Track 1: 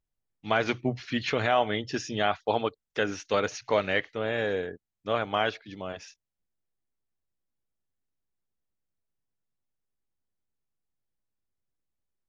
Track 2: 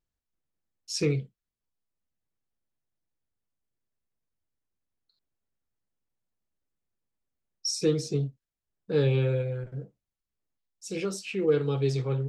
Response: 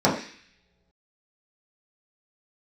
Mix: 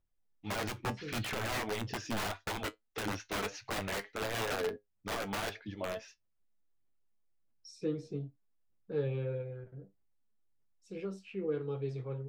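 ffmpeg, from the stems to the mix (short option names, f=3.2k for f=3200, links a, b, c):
-filter_complex "[0:a]acompressor=threshold=-26dB:ratio=4,aphaser=in_gain=1:out_gain=1:delay=4.7:decay=0.51:speed=1.6:type=sinusoidal,aeval=exprs='(mod(17.8*val(0)+1,2)-1)/17.8':c=same,volume=2.5dB,asplit=2[a][b];[1:a]bass=f=250:g=-1,treble=f=4k:g=-8,volume=-5dB[c];[b]apad=whole_len=541975[d];[c][d]sidechaincompress=threshold=-41dB:ratio=8:attack=16:release=328[e];[a][e]amix=inputs=2:normalize=0,highshelf=f=2.9k:g=-9.5,flanger=delay=9.1:depth=1.3:regen=62:speed=0.67:shape=sinusoidal"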